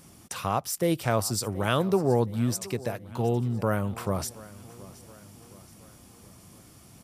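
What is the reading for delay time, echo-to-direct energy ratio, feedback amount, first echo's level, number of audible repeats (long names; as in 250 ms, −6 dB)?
723 ms, −18.0 dB, 52%, −19.5 dB, 3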